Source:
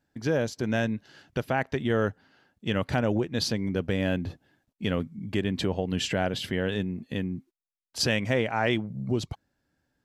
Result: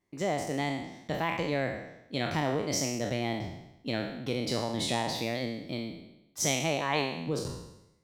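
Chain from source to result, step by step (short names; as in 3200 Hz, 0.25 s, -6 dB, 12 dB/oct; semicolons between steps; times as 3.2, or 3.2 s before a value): spectral trails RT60 1.09 s; varispeed +25%; gain -6 dB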